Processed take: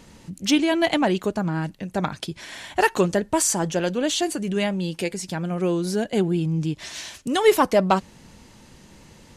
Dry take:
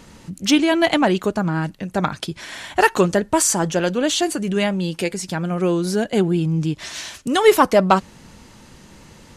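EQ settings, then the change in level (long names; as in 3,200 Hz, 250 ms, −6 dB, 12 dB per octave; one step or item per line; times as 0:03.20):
parametric band 1,300 Hz −3.5 dB 0.55 octaves
−3.5 dB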